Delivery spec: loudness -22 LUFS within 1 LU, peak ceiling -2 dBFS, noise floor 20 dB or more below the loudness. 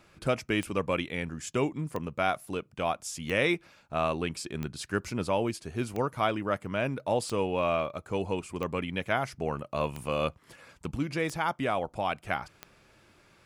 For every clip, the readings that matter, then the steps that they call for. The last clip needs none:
clicks found 10; loudness -31.5 LUFS; peak level -13.0 dBFS; loudness target -22.0 LUFS
-> de-click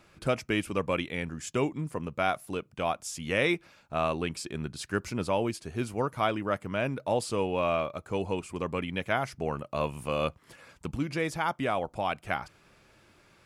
clicks found 0; loudness -31.5 LUFS; peak level -13.0 dBFS; loudness target -22.0 LUFS
-> trim +9.5 dB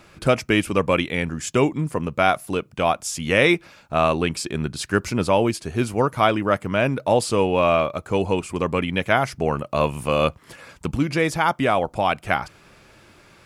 loudness -22.0 LUFS; peak level -3.5 dBFS; noise floor -52 dBFS

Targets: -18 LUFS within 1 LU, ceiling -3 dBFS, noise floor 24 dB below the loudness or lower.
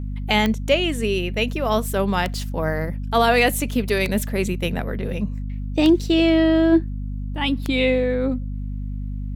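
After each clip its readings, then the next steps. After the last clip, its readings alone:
clicks found 5; hum 50 Hz; highest harmonic 250 Hz; hum level -25 dBFS; loudness -21.5 LUFS; peak level -5.5 dBFS; loudness target -18.0 LUFS
-> de-click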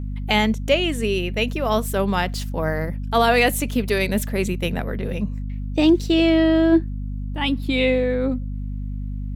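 clicks found 0; hum 50 Hz; highest harmonic 250 Hz; hum level -25 dBFS
-> de-hum 50 Hz, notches 5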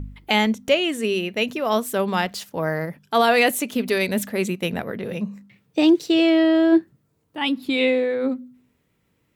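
hum not found; loudness -21.0 LUFS; peak level -6.5 dBFS; loudness target -18.0 LUFS
-> trim +3 dB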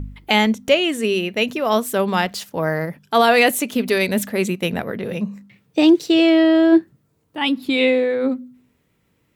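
loudness -18.0 LUFS; peak level -3.5 dBFS; noise floor -65 dBFS

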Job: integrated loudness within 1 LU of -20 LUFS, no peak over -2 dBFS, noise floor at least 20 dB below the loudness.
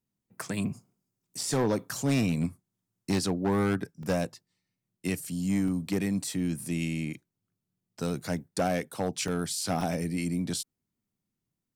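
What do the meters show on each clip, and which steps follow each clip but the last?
clipped samples 1.1%; clipping level -21.0 dBFS; dropouts 5; longest dropout 2.2 ms; loudness -30.5 LUFS; peak level -21.0 dBFS; loudness target -20.0 LUFS
-> clip repair -21 dBFS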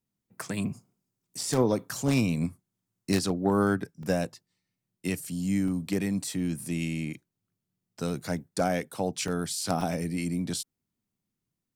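clipped samples 0.0%; dropouts 5; longest dropout 2.2 ms
-> interpolate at 1.41/4.03/5.68/9.28/9.81 s, 2.2 ms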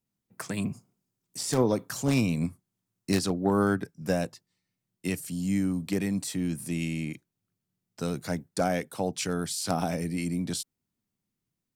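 dropouts 0; loudness -29.5 LUFS; peak level -12.0 dBFS; loudness target -20.0 LUFS
-> trim +9.5 dB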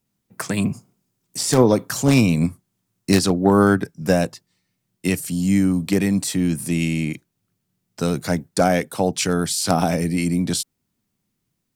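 loudness -20.0 LUFS; peak level -2.5 dBFS; noise floor -76 dBFS

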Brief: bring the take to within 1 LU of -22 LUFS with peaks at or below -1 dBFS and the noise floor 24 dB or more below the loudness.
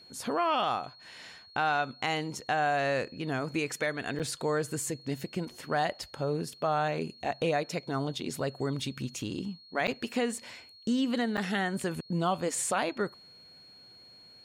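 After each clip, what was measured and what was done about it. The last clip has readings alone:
dropouts 3; longest dropout 7.5 ms; steady tone 4.3 kHz; tone level -52 dBFS; loudness -31.5 LUFS; peak level -17.0 dBFS; loudness target -22.0 LUFS
-> interpolate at 4.19/9.87/11.37 s, 7.5 ms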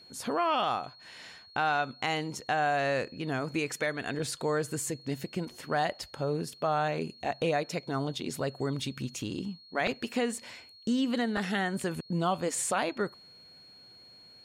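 dropouts 0; steady tone 4.3 kHz; tone level -52 dBFS
-> band-stop 4.3 kHz, Q 30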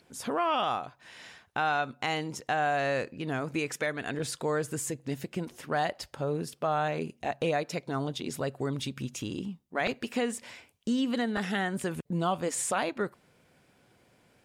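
steady tone not found; loudness -31.5 LUFS; peak level -17.5 dBFS; loudness target -22.0 LUFS
-> trim +9.5 dB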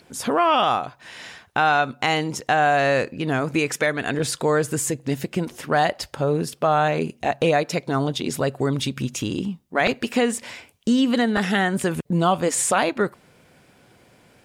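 loudness -22.0 LUFS; peak level -8.0 dBFS; noise floor -56 dBFS

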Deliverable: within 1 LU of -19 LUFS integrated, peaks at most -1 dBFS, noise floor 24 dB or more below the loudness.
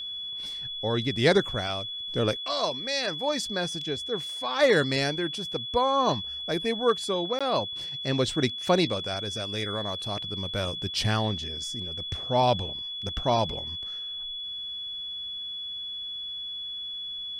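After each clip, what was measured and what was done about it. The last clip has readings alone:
dropouts 1; longest dropout 16 ms; steady tone 3.4 kHz; tone level -33 dBFS; loudness -28.0 LUFS; peak level -9.0 dBFS; loudness target -19.0 LUFS
-> interpolate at 7.39 s, 16 ms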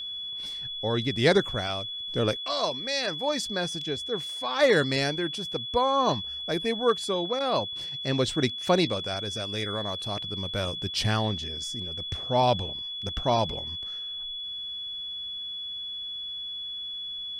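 dropouts 0; steady tone 3.4 kHz; tone level -33 dBFS
-> band-stop 3.4 kHz, Q 30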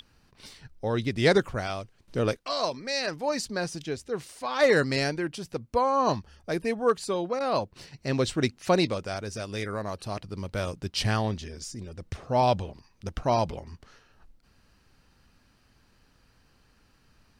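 steady tone not found; loudness -28.5 LUFS; peak level -9.5 dBFS; loudness target -19.0 LUFS
-> trim +9.5 dB; peak limiter -1 dBFS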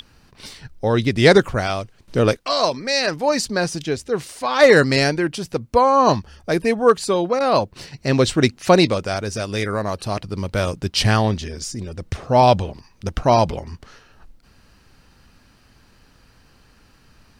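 loudness -19.0 LUFS; peak level -1.0 dBFS; noise floor -54 dBFS

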